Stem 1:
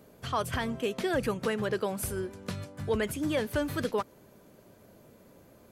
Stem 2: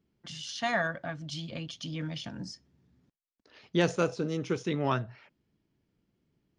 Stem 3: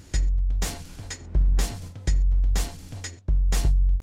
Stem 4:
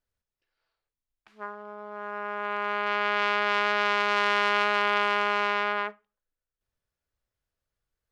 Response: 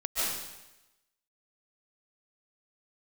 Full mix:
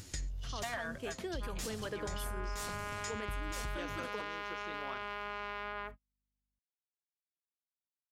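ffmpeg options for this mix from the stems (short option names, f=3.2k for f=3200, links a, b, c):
-filter_complex "[0:a]acrossover=split=490[a][b];[a]aeval=exprs='val(0)*(1-0.5/2+0.5/2*cos(2*PI*2.7*n/s))':c=same[c];[b]aeval=exprs='val(0)*(1-0.5/2-0.5/2*cos(2*PI*2.7*n/s))':c=same[d];[c][d]amix=inputs=2:normalize=0,adelay=200,volume=-9dB[e];[1:a]lowshelf=f=260:g=-11,aeval=exprs='val(0)+0.00708*(sin(2*PI*50*n/s)+sin(2*PI*2*50*n/s)/2+sin(2*PI*3*50*n/s)/3+sin(2*PI*4*50*n/s)/4+sin(2*PI*5*50*n/s)/5)':c=same,equalizer=f=120:t=o:w=1.3:g=-8.5,volume=-3dB,asplit=2[f][g];[2:a]highshelf=f=2k:g=9.5,flanger=delay=9.1:depth=7:regen=27:speed=1.8:shape=triangular,volume=2.5dB[h];[3:a]volume=-6.5dB[i];[g]apad=whole_len=177302[j];[h][j]sidechaincompress=threshold=-54dB:ratio=4:attack=16:release=1310[k];[e][k]amix=inputs=2:normalize=0,dynaudnorm=f=280:g=9:m=3.5dB,alimiter=level_in=3dB:limit=-24dB:level=0:latency=1,volume=-3dB,volume=0dB[l];[f][i]amix=inputs=2:normalize=0,agate=range=-39dB:threshold=-41dB:ratio=16:detection=peak,acompressor=threshold=-31dB:ratio=6,volume=0dB[m];[l][m]amix=inputs=2:normalize=0,acompressor=threshold=-35dB:ratio=6"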